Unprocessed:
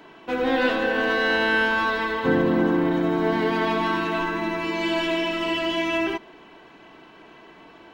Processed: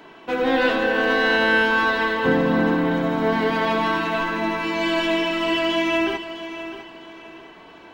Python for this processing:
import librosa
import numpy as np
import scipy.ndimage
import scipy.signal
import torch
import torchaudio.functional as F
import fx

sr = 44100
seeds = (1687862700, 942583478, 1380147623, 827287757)

p1 = fx.hum_notches(x, sr, base_hz=50, count=7)
p2 = p1 + fx.echo_feedback(p1, sr, ms=655, feedback_pct=32, wet_db=-12.0, dry=0)
y = p2 * 10.0 ** (2.5 / 20.0)